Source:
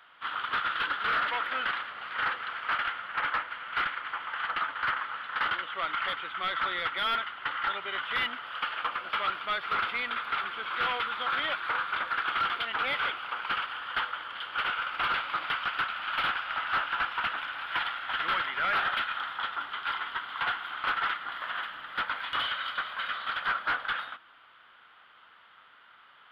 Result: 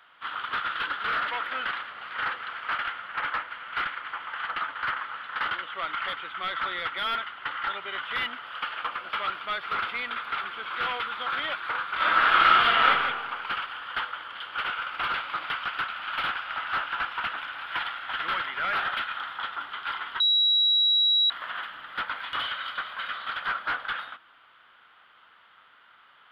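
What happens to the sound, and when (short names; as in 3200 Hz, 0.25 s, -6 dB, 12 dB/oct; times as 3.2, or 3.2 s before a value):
11.95–12.84 reverb throw, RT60 1.4 s, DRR -10.5 dB
20.2–21.3 bleep 3880 Hz -18.5 dBFS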